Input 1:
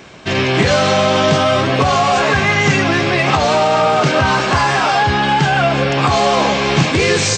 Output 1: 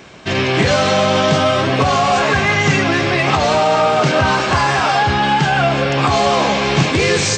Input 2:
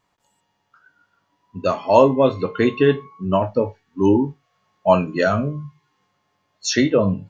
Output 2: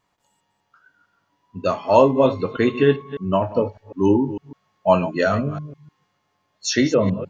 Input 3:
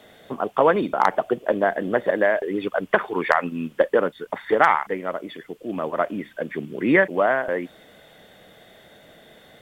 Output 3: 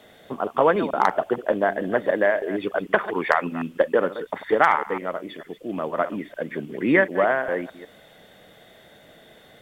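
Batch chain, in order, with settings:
delay that plays each chunk backwards 151 ms, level −13 dB
level −1 dB

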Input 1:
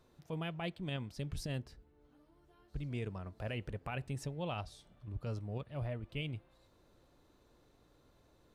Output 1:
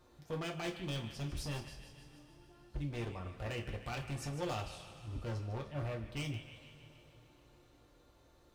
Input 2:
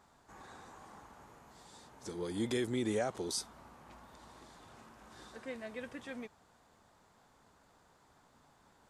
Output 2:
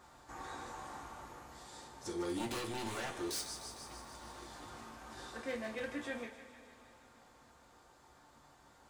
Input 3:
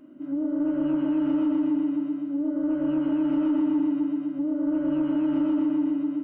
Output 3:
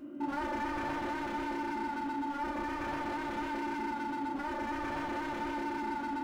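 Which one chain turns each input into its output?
parametric band 210 Hz −2.5 dB 0.78 octaves
downward compressor 10 to 1, threshold −27 dBFS
on a send: delay with a high-pass on its return 152 ms, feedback 62%, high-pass 1,500 Hz, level −10.5 dB
on the sum: wave folding −35 dBFS
speech leveller within 4 dB 2 s
coupled-rooms reverb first 0.25 s, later 4 s, from −22 dB, DRR 0.5 dB

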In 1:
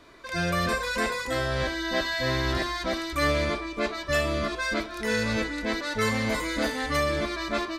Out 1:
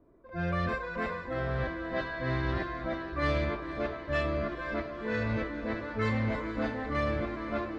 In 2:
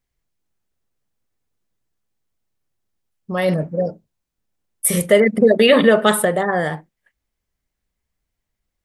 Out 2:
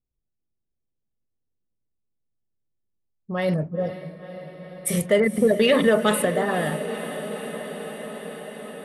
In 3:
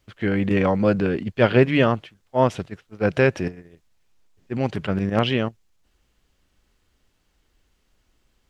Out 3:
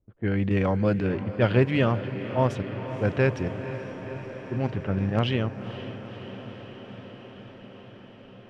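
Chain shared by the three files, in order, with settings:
in parallel at −11 dB: soft clipping −13.5 dBFS
on the sum: low-pass that shuts in the quiet parts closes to 480 Hz, open at −13 dBFS
feedback delay with all-pass diffusion 503 ms, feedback 78%, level −12 dB
dynamic equaliser 100 Hz, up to +7 dB, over −37 dBFS, Q 1.3
level −7.5 dB

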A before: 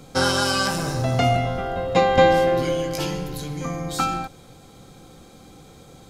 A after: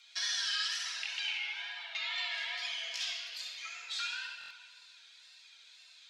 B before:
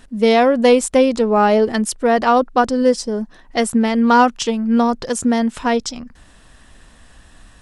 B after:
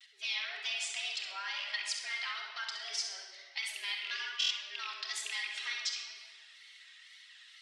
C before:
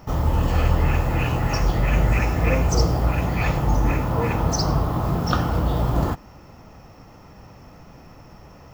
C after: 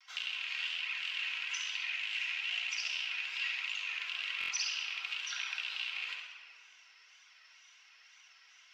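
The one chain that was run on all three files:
loose part that buzzes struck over −19 dBFS, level −14 dBFS
brickwall limiter −11.5 dBFS
frequency shifter −15 Hz
flat-topped band-pass 2,800 Hz, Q 1
tape wow and flutter 110 cents
downward compressor 2 to 1, threshold −35 dBFS
high-shelf EQ 2,400 Hz +12 dB
on a send: flutter between parallel walls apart 11.5 metres, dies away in 0.42 s
on the sum: rectangular room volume 2,800 cubic metres, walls mixed, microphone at 2.4 metres
frequency shifter +180 Hz
flanger 1.1 Hz, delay 0.8 ms, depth 2.3 ms, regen −45%
buffer that repeats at 0:04.39, samples 1,024, times 4
level −6 dB

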